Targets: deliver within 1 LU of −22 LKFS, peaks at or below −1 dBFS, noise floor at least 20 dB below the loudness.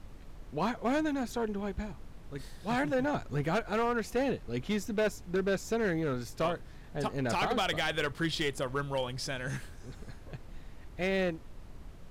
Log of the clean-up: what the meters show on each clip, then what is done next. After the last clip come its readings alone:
share of clipped samples 1.4%; peaks flattened at −24.0 dBFS; background noise floor −49 dBFS; target noise floor −53 dBFS; integrated loudness −32.5 LKFS; sample peak −24.0 dBFS; target loudness −22.0 LKFS
→ clipped peaks rebuilt −24 dBFS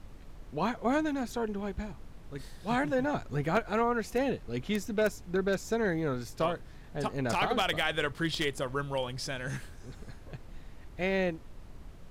share of clipped samples 0.0%; background noise floor −49 dBFS; target noise floor −52 dBFS
→ noise reduction from a noise print 6 dB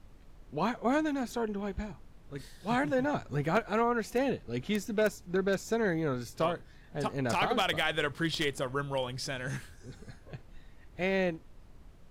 background noise floor −55 dBFS; integrated loudness −32.0 LKFS; sample peak −15.0 dBFS; target loudness −22.0 LKFS
→ level +10 dB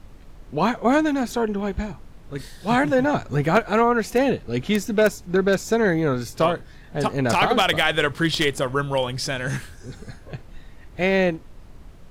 integrated loudness −22.0 LKFS; sample peak −5.0 dBFS; background noise floor −45 dBFS

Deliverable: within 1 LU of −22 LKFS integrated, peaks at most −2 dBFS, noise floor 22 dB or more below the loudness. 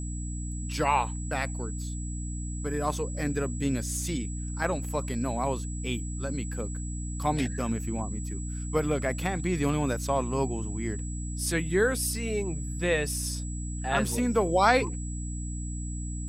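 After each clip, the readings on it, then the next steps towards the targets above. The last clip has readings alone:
mains hum 60 Hz; hum harmonics up to 300 Hz; level of the hum −32 dBFS; interfering tone 7,800 Hz; level of the tone −42 dBFS; integrated loudness −30.0 LKFS; sample peak −8.0 dBFS; target loudness −22.0 LKFS
→ hum removal 60 Hz, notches 5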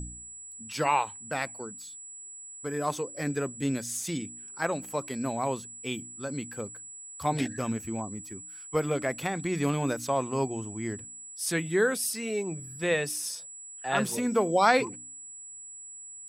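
mains hum none found; interfering tone 7,800 Hz; level of the tone −42 dBFS
→ notch filter 7,800 Hz, Q 30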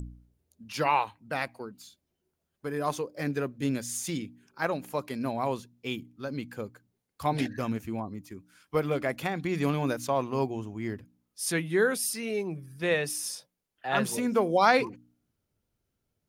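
interfering tone none found; integrated loudness −30.0 LKFS; sample peak −8.5 dBFS; target loudness −22.0 LKFS
→ level +8 dB
brickwall limiter −2 dBFS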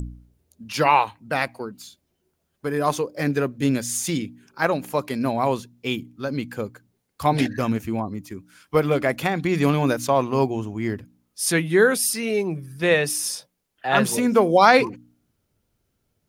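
integrated loudness −22.5 LKFS; sample peak −2.0 dBFS; background noise floor −74 dBFS

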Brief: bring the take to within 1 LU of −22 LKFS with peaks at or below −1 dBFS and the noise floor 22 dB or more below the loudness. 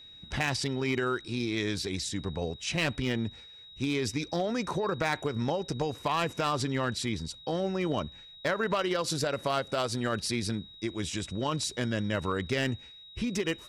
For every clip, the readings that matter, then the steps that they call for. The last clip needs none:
share of clipped samples 0.4%; peaks flattened at −20.0 dBFS; interfering tone 3,800 Hz; level of the tone −48 dBFS; integrated loudness −31.5 LKFS; sample peak −20.0 dBFS; target loudness −22.0 LKFS
→ clipped peaks rebuilt −20 dBFS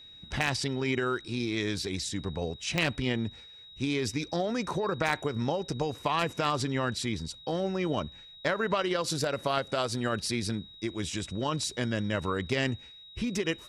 share of clipped samples 0.0%; interfering tone 3,800 Hz; level of the tone −48 dBFS
→ notch filter 3,800 Hz, Q 30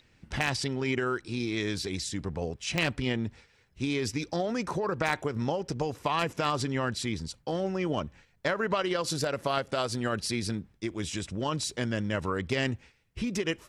interfering tone none found; integrated loudness −31.0 LKFS; sample peak −11.0 dBFS; target loudness −22.0 LKFS
→ level +9 dB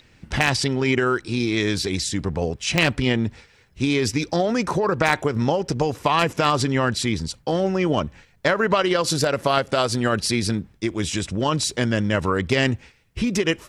integrated loudness −22.0 LKFS; sample peak −2.0 dBFS; background noise floor −56 dBFS

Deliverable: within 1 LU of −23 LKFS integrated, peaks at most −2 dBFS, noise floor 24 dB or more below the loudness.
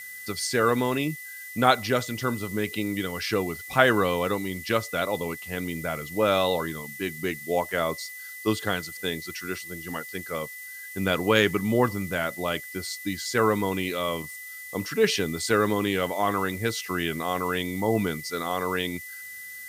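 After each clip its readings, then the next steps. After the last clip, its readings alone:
interfering tone 2,000 Hz; level of the tone −39 dBFS; background noise floor −41 dBFS; target noise floor −51 dBFS; integrated loudness −27.0 LKFS; sample peak −3.5 dBFS; target loudness −23.0 LKFS
→ notch filter 2,000 Hz, Q 30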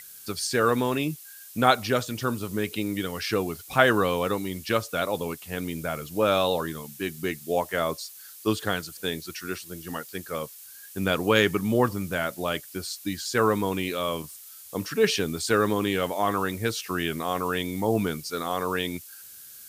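interfering tone none found; background noise floor −46 dBFS; target noise floor −51 dBFS
→ noise reduction from a noise print 6 dB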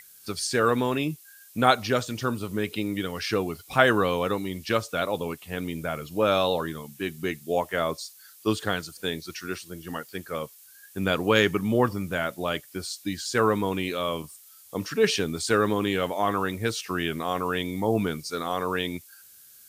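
background noise floor −52 dBFS; integrated loudness −27.0 LKFS; sample peak −3.5 dBFS; target loudness −23.0 LKFS
→ level +4 dB
brickwall limiter −2 dBFS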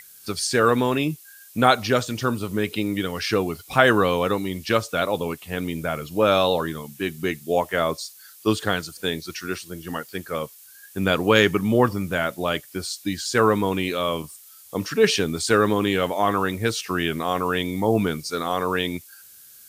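integrated loudness −23.0 LKFS; sample peak −2.0 dBFS; background noise floor −48 dBFS

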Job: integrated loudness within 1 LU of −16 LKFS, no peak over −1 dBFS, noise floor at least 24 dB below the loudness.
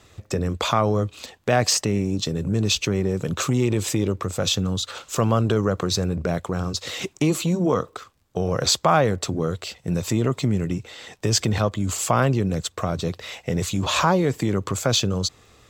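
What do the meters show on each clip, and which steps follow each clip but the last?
crackle rate 21 per second; integrated loudness −23.0 LKFS; sample peak −5.5 dBFS; target loudness −16.0 LKFS
→ click removal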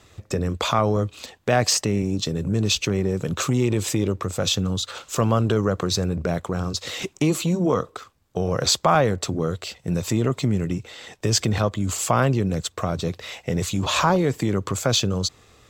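crackle rate 0.19 per second; integrated loudness −23.0 LKFS; sample peak −5.5 dBFS; target loudness −16.0 LKFS
→ level +7 dB
brickwall limiter −1 dBFS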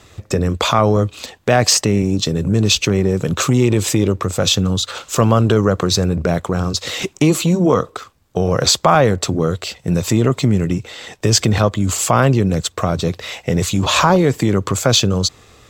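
integrated loudness −16.5 LKFS; sample peak −1.0 dBFS; background noise floor −49 dBFS

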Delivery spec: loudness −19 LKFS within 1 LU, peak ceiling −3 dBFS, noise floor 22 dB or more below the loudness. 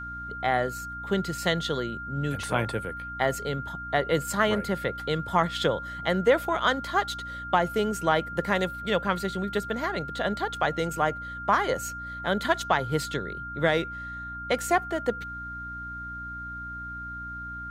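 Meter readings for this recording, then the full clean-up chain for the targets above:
mains hum 60 Hz; hum harmonics up to 300 Hz; level of the hum −40 dBFS; interfering tone 1,400 Hz; level of the tone −35 dBFS; integrated loudness −28.0 LKFS; sample peak −9.0 dBFS; target loudness −19.0 LKFS
→ hum removal 60 Hz, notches 5
notch filter 1,400 Hz, Q 30
level +9 dB
brickwall limiter −3 dBFS

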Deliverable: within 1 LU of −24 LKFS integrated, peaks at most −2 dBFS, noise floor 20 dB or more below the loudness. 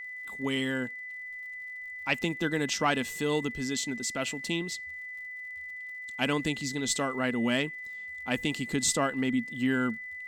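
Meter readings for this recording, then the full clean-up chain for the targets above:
crackle rate 51 per second; interfering tone 2,000 Hz; level of the tone −38 dBFS; integrated loudness −31.0 LKFS; sample peak −12.0 dBFS; target loudness −24.0 LKFS
→ click removal
notch filter 2,000 Hz, Q 30
level +7 dB

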